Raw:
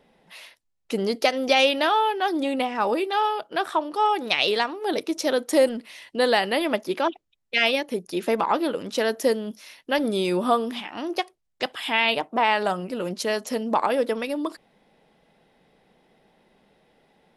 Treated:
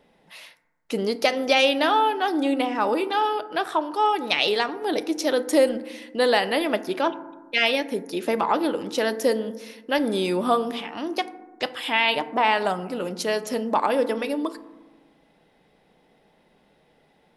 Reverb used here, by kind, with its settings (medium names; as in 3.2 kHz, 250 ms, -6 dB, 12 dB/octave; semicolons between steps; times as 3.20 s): FDN reverb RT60 1.2 s, low-frequency decay 1.4×, high-frequency decay 0.3×, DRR 12 dB